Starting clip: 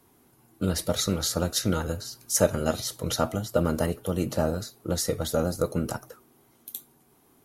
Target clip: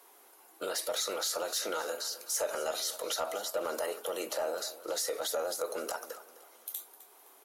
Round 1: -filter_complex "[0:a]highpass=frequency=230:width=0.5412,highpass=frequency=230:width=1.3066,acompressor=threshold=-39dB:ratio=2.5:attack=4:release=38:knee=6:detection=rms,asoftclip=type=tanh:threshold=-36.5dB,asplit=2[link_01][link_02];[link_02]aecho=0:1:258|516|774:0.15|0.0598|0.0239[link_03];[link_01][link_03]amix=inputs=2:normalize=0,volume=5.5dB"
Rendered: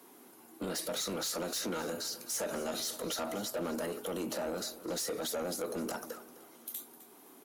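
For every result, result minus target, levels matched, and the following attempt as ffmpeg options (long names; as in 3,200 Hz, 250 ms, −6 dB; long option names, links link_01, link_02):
250 Hz band +11.5 dB; soft clipping: distortion +10 dB
-filter_complex "[0:a]highpass=frequency=470:width=0.5412,highpass=frequency=470:width=1.3066,acompressor=threshold=-39dB:ratio=2.5:attack=4:release=38:knee=6:detection=rms,asoftclip=type=tanh:threshold=-36.5dB,asplit=2[link_01][link_02];[link_02]aecho=0:1:258|516|774:0.15|0.0598|0.0239[link_03];[link_01][link_03]amix=inputs=2:normalize=0,volume=5.5dB"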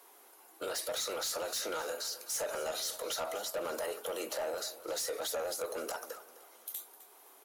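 soft clipping: distortion +9 dB
-filter_complex "[0:a]highpass=frequency=470:width=0.5412,highpass=frequency=470:width=1.3066,acompressor=threshold=-39dB:ratio=2.5:attack=4:release=38:knee=6:detection=rms,asoftclip=type=tanh:threshold=-28.5dB,asplit=2[link_01][link_02];[link_02]aecho=0:1:258|516|774:0.15|0.0598|0.0239[link_03];[link_01][link_03]amix=inputs=2:normalize=0,volume=5.5dB"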